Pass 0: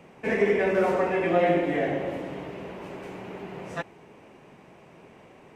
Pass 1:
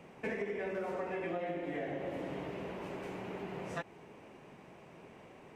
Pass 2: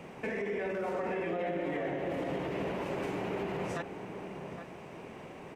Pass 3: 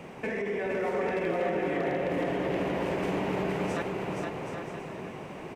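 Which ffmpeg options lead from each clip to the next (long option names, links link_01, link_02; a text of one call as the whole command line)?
ffmpeg -i in.wav -af "acompressor=threshold=-31dB:ratio=10,volume=-3.5dB" out.wav
ffmpeg -i in.wav -filter_complex "[0:a]alimiter=level_in=10.5dB:limit=-24dB:level=0:latency=1:release=33,volume=-10.5dB,asplit=2[link_01][link_02];[link_02]adelay=816.3,volume=-8dB,highshelf=frequency=4000:gain=-18.4[link_03];[link_01][link_03]amix=inputs=2:normalize=0,volume=7.5dB" out.wav
ffmpeg -i in.wav -af "aecho=1:1:470|775.5|974.1|1103|1187:0.631|0.398|0.251|0.158|0.1,aeval=exprs='0.0668*(abs(mod(val(0)/0.0668+3,4)-2)-1)':channel_layout=same,volume=3dB" out.wav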